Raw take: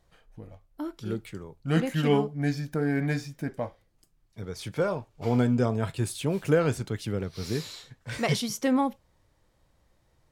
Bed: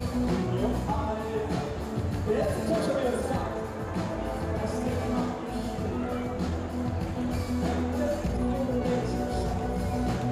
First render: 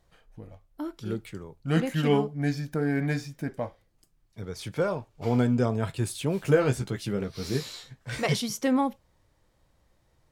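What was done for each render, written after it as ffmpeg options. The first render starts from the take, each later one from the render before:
ffmpeg -i in.wav -filter_complex "[0:a]asettb=1/sr,asplit=3[link_01][link_02][link_03];[link_01]atrim=end=6.434[link_04];[link_02]atrim=start=6.43:end=8.26,asetpts=PTS-STARTPTS,afade=type=in:duration=0.004:curve=qsin,afade=type=out:start_time=1.826:duration=0.004:curve=qsin,asplit=2[link_05][link_06];[link_06]adelay=15,volume=-5dB[link_07];[link_05][link_07]amix=inputs=2:normalize=0,atrim=end_sample=80703[link_08];[link_03]atrim=start=8.256[link_09];[link_04][link_08]acrossfade=duration=0.004:curve1=hsin:curve2=qsin[link_10];[link_10][link_09]acrossfade=duration=0.004:curve1=qsin:curve2=hsin" out.wav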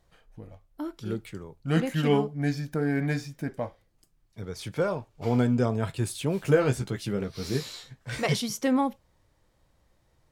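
ffmpeg -i in.wav -af anull out.wav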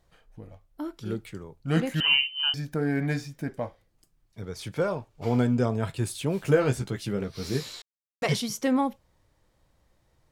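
ffmpeg -i in.wav -filter_complex "[0:a]asettb=1/sr,asplit=3[link_01][link_02][link_03];[link_01]atrim=end=2.004[link_04];[link_02]atrim=start=2:end=2.54,asetpts=PTS-STARTPTS,afade=type=in:duration=0.004:curve=qsin,afade=type=out:start_time=0.536:duration=0.004:curve=qsin,lowpass=frequency=2700:width_type=q:width=0.5098,lowpass=frequency=2700:width_type=q:width=0.6013,lowpass=frequency=2700:width_type=q:width=0.9,lowpass=frequency=2700:width_type=q:width=2.563,afreqshift=-3200[link_05];[link_03]atrim=start=2.536[link_06];[link_04][link_05]acrossfade=duration=0.004:curve1=hsin:curve2=qsin[link_07];[link_07][link_06]acrossfade=duration=0.004:curve1=qsin:curve2=hsin,asplit=3[link_08][link_09][link_10];[link_08]atrim=end=7.82,asetpts=PTS-STARTPTS,afade=type=out:start_time=7.816:duration=0.004:curve=hsin[link_11];[link_09]atrim=start=7.82:end=8.22,asetpts=PTS-STARTPTS,volume=0[link_12];[link_10]atrim=start=8.22,asetpts=PTS-STARTPTS,afade=type=in:duration=0.004:curve=hsin[link_13];[link_11][link_12][link_13]concat=n=3:v=0:a=1" out.wav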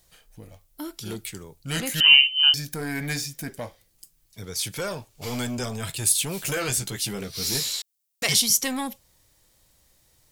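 ffmpeg -i in.wav -filter_complex "[0:a]acrossover=split=1400[link_01][link_02];[link_01]asoftclip=type=tanh:threshold=-27dB[link_03];[link_02]crystalizer=i=6:c=0[link_04];[link_03][link_04]amix=inputs=2:normalize=0" out.wav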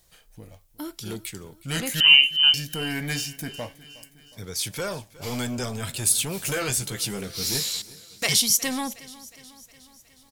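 ffmpeg -i in.wav -af "aecho=1:1:363|726|1089|1452|1815:0.1|0.059|0.0348|0.0205|0.0121" out.wav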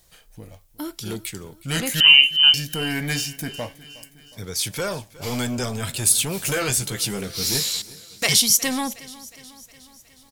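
ffmpeg -i in.wav -af "volume=3.5dB,alimiter=limit=-2dB:level=0:latency=1" out.wav

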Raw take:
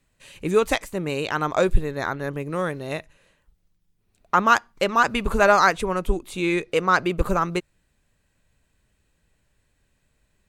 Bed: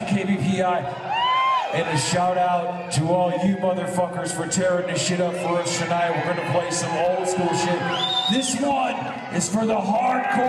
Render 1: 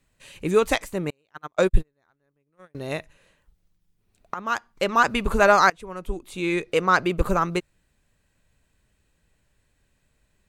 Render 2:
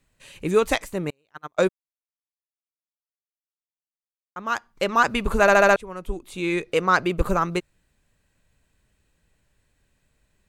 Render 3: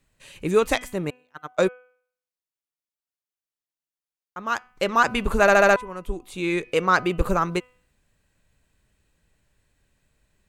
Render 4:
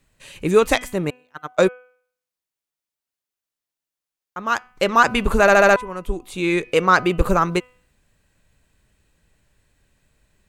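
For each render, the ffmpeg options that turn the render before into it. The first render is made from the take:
ffmpeg -i in.wav -filter_complex "[0:a]asettb=1/sr,asplit=3[link_01][link_02][link_03];[link_01]atrim=end=1.104[link_04];[link_02]atrim=start=1.1:end=2.75,asetpts=PTS-STARTPTS,afade=type=in:duration=0.004:curve=qsin,afade=type=out:start_time=1.646:duration=0.004:curve=qsin,agate=range=-42dB:threshold=-21dB:ratio=16:release=100:detection=peak[link_05];[link_03]atrim=start=2.746[link_06];[link_04][link_05]acrossfade=duration=0.004:curve1=hsin:curve2=qsin[link_07];[link_07][link_06]acrossfade=duration=0.004:curve1=qsin:curve2=hsin,asplit=3[link_08][link_09][link_10];[link_08]atrim=end=4.34,asetpts=PTS-STARTPTS,afade=type=out:start_time=4.336:duration=0.004:curve=hsin:silence=0.112202[link_11];[link_09]atrim=start=4.34:end=5.7,asetpts=PTS-STARTPTS,afade=type=in:duration=0.62:silence=0.112202,afade=type=out:start_time=1.356:duration=0.004:curve=hsin:silence=0.0891251[link_12];[link_10]atrim=start=5.7,asetpts=PTS-STARTPTS,afade=type=in:duration=1.02:silence=0.0891251[link_13];[link_11][link_12][link_13]concat=n=3:v=0:a=1" out.wav
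ffmpeg -i in.wav -filter_complex "[0:a]asplit=8[link_01][link_02][link_03][link_04][link_05][link_06][link_07][link_08];[link_01]atrim=end=1.69,asetpts=PTS-STARTPTS,afade=type=out:start_time=1.686:duration=0.004:curve=hsin[link_09];[link_02]atrim=start=1.69:end=4.36,asetpts=PTS-STARTPTS,volume=0[link_10];[link_03]atrim=start=4.36:end=5.482,asetpts=PTS-STARTPTS,afade=type=in:duration=0.004:curve=hsin[link_11];[link_04]atrim=start=5.408:end=5.482[link_12];[link_05]atrim=start=5.408:end=5.482[link_13];[link_06]atrim=start=5.408:end=5.482[link_14];[link_07]atrim=start=5.408:end=5.482[link_15];[link_08]atrim=start=5.758[link_16];[link_09][link_10][link_11]concat=n=3:v=0:a=1[link_17];[link_17][link_12]acrossfade=duration=0.004:curve1=hsin:curve2=hsin[link_18];[link_18][link_13]acrossfade=duration=0.004:curve1=hsin:curve2=hsin[link_19];[link_19][link_14]acrossfade=duration=0.004:curve1=hsin:curve2=hsin[link_20];[link_20][link_15]acrossfade=duration=0.004:curve1=hsin:curve2=hsin[link_21];[link_21][link_16]acrossfade=duration=0.004:curve1=hsin:curve2=hsin" out.wav
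ffmpeg -i in.wav -af "bandreject=frequency=250.1:width_type=h:width=4,bandreject=frequency=500.2:width_type=h:width=4,bandreject=frequency=750.3:width_type=h:width=4,bandreject=frequency=1000.4:width_type=h:width=4,bandreject=frequency=1250.5:width_type=h:width=4,bandreject=frequency=1500.6:width_type=h:width=4,bandreject=frequency=1750.7:width_type=h:width=4,bandreject=frequency=2000.8:width_type=h:width=4,bandreject=frequency=2250.9:width_type=h:width=4,bandreject=frequency=2501:width_type=h:width=4,bandreject=frequency=2751.1:width_type=h:width=4,bandreject=frequency=3001.2:width_type=h:width=4,bandreject=frequency=3251.3:width_type=h:width=4" out.wav
ffmpeg -i in.wav -af "volume=4.5dB,alimiter=limit=-2dB:level=0:latency=1" out.wav

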